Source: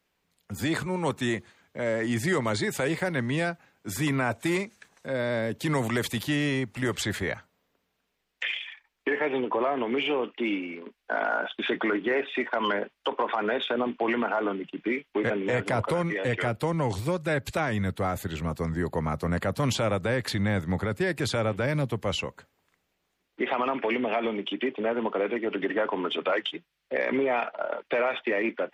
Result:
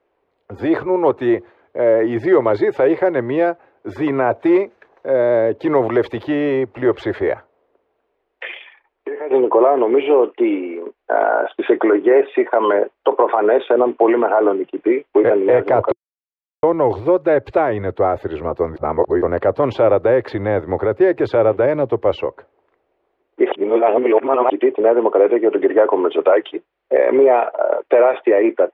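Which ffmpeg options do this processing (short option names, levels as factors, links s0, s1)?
-filter_complex "[0:a]asettb=1/sr,asplit=3[s0][s1][s2];[s0]atrim=end=8.684[s3];[s1]atrim=start=8.68:end=9.31,asetpts=PTS-STARTPTS,afade=t=in:d=0.004:c=qsin,afade=t=out:st=0.626:d=0.004:c=qsin,acompressor=threshold=0.00562:ratio=2:attack=3.2:release=140:knee=1:detection=peak[s4];[s2]atrim=start=9.306[s5];[s3][s4]acrossfade=d=0.004:c1=hsin:c2=qsin[s6];[s6][s5]acrossfade=d=0.004:c1=qsin:c2=hsin,asplit=7[s7][s8][s9][s10][s11][s12][s13];[s7]atrim=end=15.92,asetpts=PTS-STARTPTS,afade=t=out:st=15.916:d=0.004:c=hsin[s14];[s8]atrim=start=15.92:end=16.63,asetpts=PTS-STARTPTS,volume=0[s15];[s9]atrim=start=16.63:end=18.762,asetpts=PTS-STARTPTS,afade=t=in:d=0.004:c=hsin[s16];[s10]atrim=start=18.758:end=19.222,asetpts=PTS-STARTPTS,areverse[s17];[s11]atrim=start=19.218:end=23.522[s18];[s12]atrim=start=23.518:end=24.502,asetpts=PTS-STARTPTS,areverse[s19];[s13]atrim=start=24.498[s20];[s14][s15][s16]concat=n=3:v=0:a=1[s21];[s21][s17]acrossfade=d=0.004:c1=hsin:c2=hsin[s22];[s22][s18]acrossfade=d=0.004:c1=hsin:c2=hsin[s23];[s23][s19]acrossfade=d=0.004:c1=hsin:c2=hsin[s24];[s24][s20]acrossfade=d=0.004:c1=hsin:c2=hsin,firequalizer=gain_entry='entry(120,0);entry(170,-9);entry(350,14);entry(580,13);entry(1500,2);entry(7900,-30)':delay=0.05:min_phase=1,volume=1.26"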